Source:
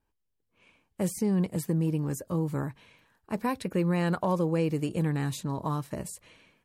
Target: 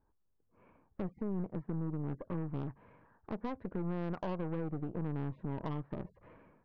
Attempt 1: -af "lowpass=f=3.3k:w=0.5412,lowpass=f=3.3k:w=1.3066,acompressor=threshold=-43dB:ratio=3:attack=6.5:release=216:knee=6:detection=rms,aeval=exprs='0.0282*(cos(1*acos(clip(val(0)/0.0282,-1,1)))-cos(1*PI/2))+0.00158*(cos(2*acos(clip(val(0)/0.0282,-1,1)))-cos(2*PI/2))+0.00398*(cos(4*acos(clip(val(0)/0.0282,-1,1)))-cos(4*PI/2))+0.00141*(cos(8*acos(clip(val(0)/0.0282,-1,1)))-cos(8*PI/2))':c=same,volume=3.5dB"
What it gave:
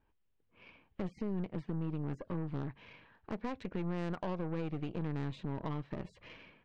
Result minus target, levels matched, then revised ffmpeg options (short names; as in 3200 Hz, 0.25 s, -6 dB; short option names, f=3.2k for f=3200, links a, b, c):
4000 Hz band +7.0 dB
-af "lowpass=f=1.4k:w=0.5412,lowpass=f=1.4k:w=1.3066,acompressor=threshold=-43dB:ratio=3:attack=6.5:release=216:knee=6:detection=rms,aeval=exprs='0.0282*(cos(1*acos(clip(val(0)/0.0282,-1,1)))-cos(1*PI/2))+0.00158*(cos(2*acos(clip(val(0)/0.0282,-1,1)))-cos(2*PI/2))+0.00398*(cos(4*acos(clip(val(0)/0.0282,-1,1)))-cos(4*PI/2))+0.00141*(cos(8*acos(clip(val(0)/0.0282,-1,1)))-cos(8*PI/2))':c=same,volume=3.5dB"